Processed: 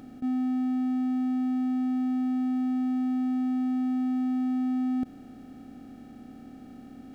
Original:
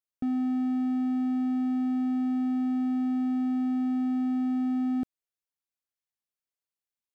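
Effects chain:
compressor on every frequency bin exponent 0.2
level that may rise only so fast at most 470 dB per second

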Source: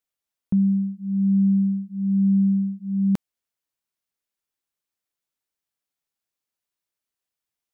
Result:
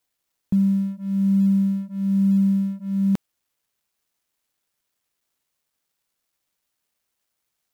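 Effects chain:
mu-law and A-law mismatch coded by mu

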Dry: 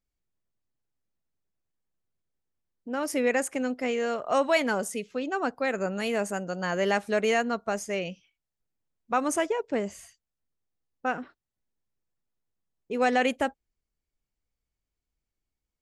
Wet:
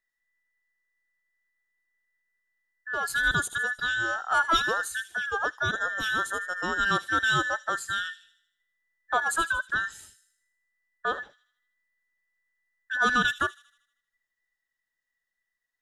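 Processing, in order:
frequency inversion band by band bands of 2,000 Hz
delay with a high-pass on its return 78 ms, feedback 51%, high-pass 3,800 Hz, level −11 dB

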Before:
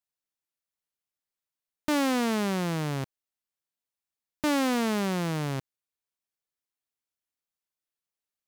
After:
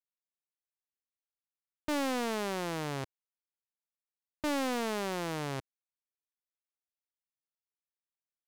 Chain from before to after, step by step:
low-pass that shuts in the quiet parts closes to 2,400 Hz, open at −26 dBFS
parametric band 180 Hz −11.5 dB 1.1 octaves
leveller curve on the samples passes 2
level −8 dB

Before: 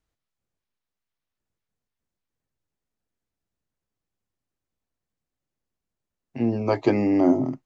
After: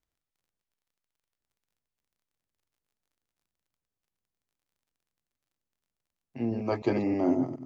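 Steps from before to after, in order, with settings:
delay that plays each chunk backwards 105 ms, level −7 dB
surface crackle 38 per second −56 dBFS
level −7 dB

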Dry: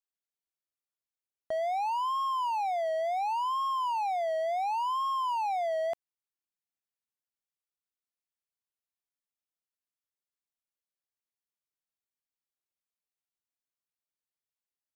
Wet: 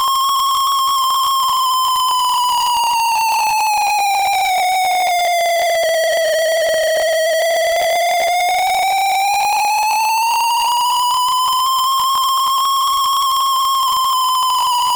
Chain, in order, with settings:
extreme stretch with random phases 8.7×, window 0.05 s, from 0:02.16
fuzz pedal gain 56 dB, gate −58 dBFS
leveller curve on the samples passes 1
level −2 dB

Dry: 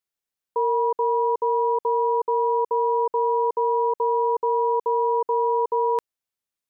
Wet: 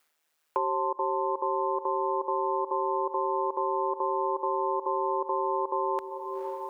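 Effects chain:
high-pass filter 740 Hz 6 dB per octave
ring modulation 77 Hz
reversed playback
upward compression, threshold −51 dBFS
reversed playback
feedback delay with all-pass diffusion 476 ms, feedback 49%, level −12.5 dB
multiband upward and downward compressor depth 70%

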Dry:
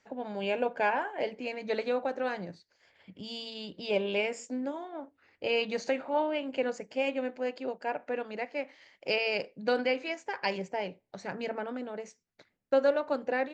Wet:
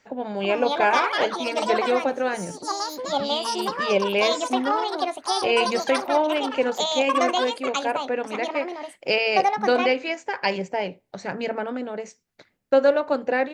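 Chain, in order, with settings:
delay with pitch and tempo change per echo 364 ms, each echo +6 semitones, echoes 2
level +7.5 dB

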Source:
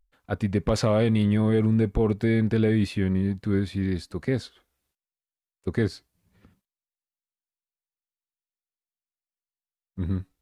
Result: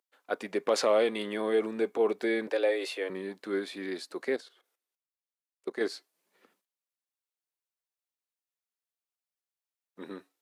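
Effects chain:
0:04.36–0:05.81: output level in coarse steps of 13 dB
high-pass filter 350 Hz 24 dB per octave
0:02.47–0:03.10: frequency shifter +94 Hz

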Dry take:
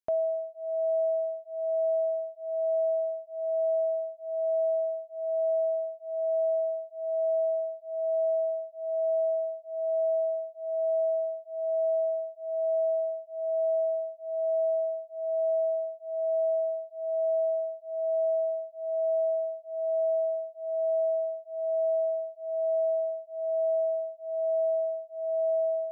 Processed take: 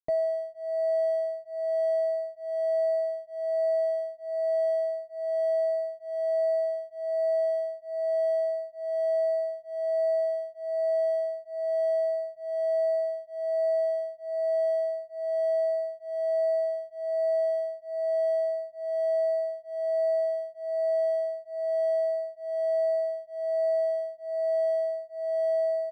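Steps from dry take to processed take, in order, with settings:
running median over 41 samples
tilt shelving filter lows +8 dB, about 720 Hz
comb filter 6.4 ms, depth 61%

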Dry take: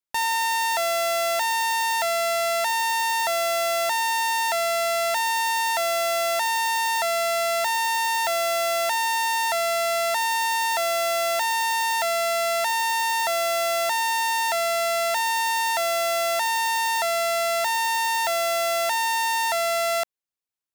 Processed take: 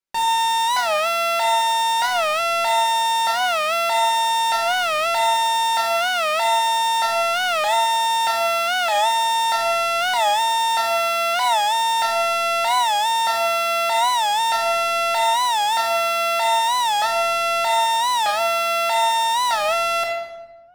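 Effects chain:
high-shelf EQ 9,200 Hz −11 dB
convolution reverb RT60 1.2 s, pre-delay 5 ms, DRR −3 dB
wow of a warped record 45 rpm, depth 160 cents

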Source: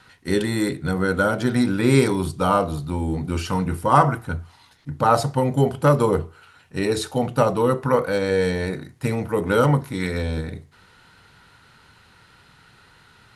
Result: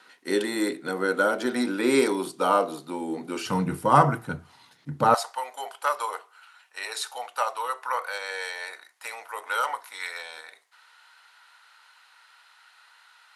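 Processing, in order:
high-pass filter 270 Hz 24 dB per octave, from 0:03.46 130 Hz, from 0:05.14 790 Hz
level −2 dB

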